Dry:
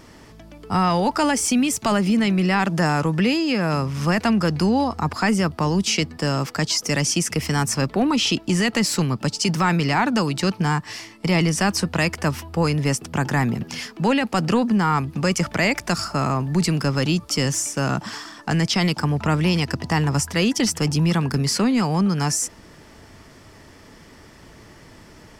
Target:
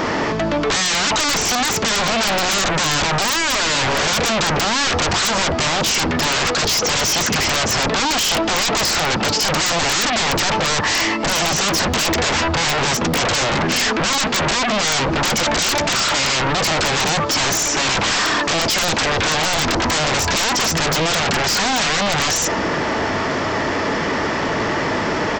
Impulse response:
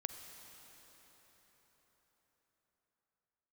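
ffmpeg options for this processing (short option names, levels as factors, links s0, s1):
-filter_complex "[0:a]asplit=2[s0][s1];[s1]highpass=f=720:p=1,volume=25.1,asoftclip=type=tanh:threshold=0.376[s2];[s0][s2]amix=inputs=2:normalize=0,lowpass=f=1000:p=1,volume=0.501,aresample=16000,aeval=exprs='0.355*sin(PI/2*7.08*val(0)/0.355)':c=same,aresample=44100,bandreject=f=60:t=h:w=6,bandreject=f=120:t=h:w=6,bandreject=f=180:t=h:w=6,bandreject=f=240:t=h:w=6,bandreject=f=300:t=h:w=6,bandreject=f=360:t=h:w=6,bandreject=f=420:t=h:w=6,aeval=exprs='(mod(1.78*val(0)+1,2)-1)/1.78':c=same,volume=0.501"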